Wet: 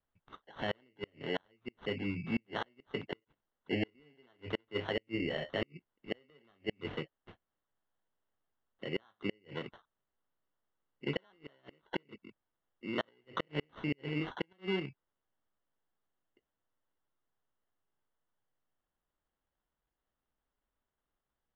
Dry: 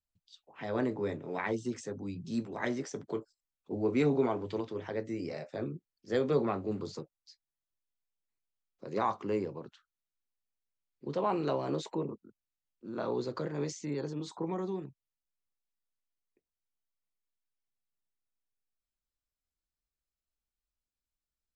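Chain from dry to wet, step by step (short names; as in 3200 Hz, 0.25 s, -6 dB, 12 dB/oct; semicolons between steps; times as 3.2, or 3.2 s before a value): flipped gate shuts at -25 dBFS, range -39 dB; sample-and-hold 18×; ladder low-pass 3200 Hz, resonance 50%; gain +12 dB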